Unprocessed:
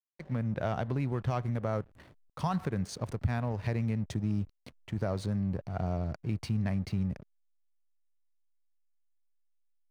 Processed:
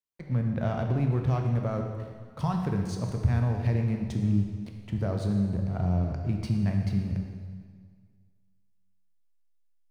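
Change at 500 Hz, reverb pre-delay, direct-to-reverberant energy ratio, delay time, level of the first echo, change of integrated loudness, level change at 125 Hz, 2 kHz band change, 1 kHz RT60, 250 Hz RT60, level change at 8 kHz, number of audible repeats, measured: +2.0 dB, 7 ms, 2.5 dB, none, none, +5.0 dB, +6.0 dB, +0.5 dB, 1.8 s, 1.8 s, n/a, none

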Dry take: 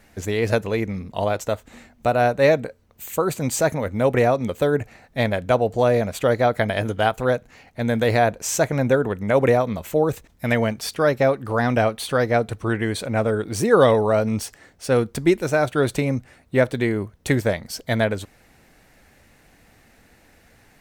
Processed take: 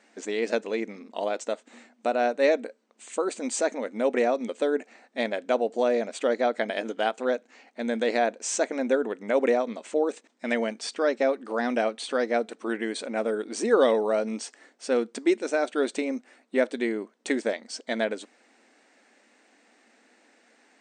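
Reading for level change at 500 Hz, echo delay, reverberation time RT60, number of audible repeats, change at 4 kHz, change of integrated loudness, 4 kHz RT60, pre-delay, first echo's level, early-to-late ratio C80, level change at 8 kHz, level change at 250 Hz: -5.0 dB, none, none, none, -4.5 dB, -6.0 dB, none, none, none, none, -5.0 dB, -6.0 dB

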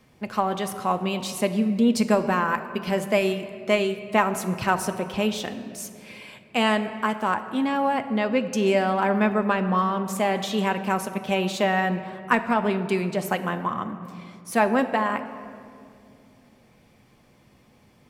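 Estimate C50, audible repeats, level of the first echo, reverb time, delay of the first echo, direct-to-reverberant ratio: 11.0 dB, none, none, 2.4 s, none, 7.0 dB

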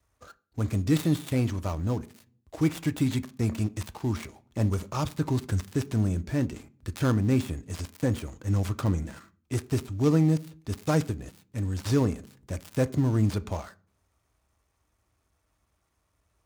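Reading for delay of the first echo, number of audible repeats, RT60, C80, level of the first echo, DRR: none, none, 0.40 s, 26.5 dB, none, 11.5 dB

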